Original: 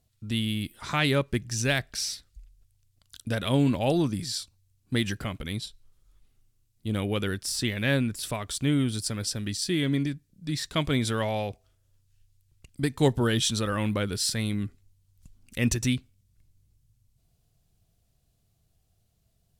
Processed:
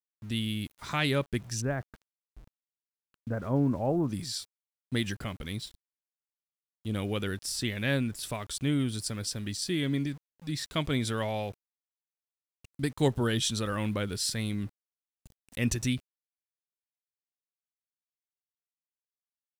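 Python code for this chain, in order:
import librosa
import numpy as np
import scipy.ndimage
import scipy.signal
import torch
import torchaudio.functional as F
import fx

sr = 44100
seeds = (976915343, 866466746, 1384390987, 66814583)

y = fx.lowpass(x, sr, hz=1400.0, slope=24, at=(1.6, 4.08), fade=0.02)
y = np.where(np.abs(y) >= 10.0 ** (-47.0 / 20.0), y, 0.0)
y = F.gain(torch.from_numpy(y), -3.5).numpy()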